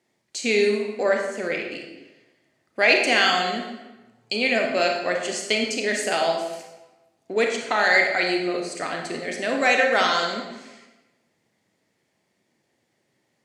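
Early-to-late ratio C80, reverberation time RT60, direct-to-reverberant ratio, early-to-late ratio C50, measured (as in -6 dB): 6.0 dB, 1.1 s, 1.0 dB, 3.5 dB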